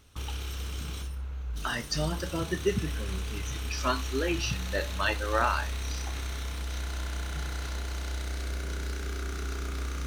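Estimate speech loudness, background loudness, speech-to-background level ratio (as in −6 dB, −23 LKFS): −32.0 LKFS, −36.0 LKFS, 4.0 dB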